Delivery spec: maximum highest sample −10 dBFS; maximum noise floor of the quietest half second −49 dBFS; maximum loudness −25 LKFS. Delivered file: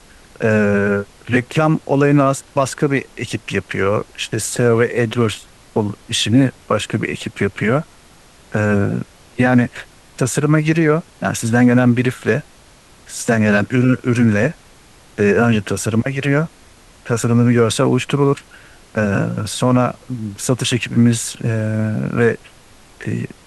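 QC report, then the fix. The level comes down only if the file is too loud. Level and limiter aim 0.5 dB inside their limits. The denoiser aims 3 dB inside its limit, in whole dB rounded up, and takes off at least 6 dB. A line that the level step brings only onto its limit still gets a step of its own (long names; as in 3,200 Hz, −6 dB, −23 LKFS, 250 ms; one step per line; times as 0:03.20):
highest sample −3.0 dBFS: out of spec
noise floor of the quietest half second −46 dBFS: out of spec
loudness −17.5 LKFS: out of spec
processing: level −8 dB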